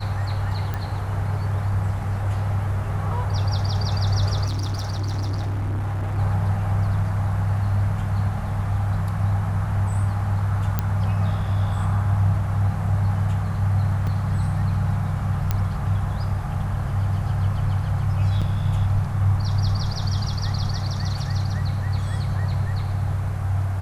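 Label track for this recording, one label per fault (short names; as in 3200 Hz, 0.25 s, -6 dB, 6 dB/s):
0.740000	0.740000	pop -15 dBFS
4.460000	6.190000	clipped -22.5 dBFS
10.790000	10.790000	pop -9 dBFS
14.070000	14.070000	gap 4.3 ms
15.510000	15.510000	pop -9 dBFS
18.410000	18.420000	gap 6.3 ms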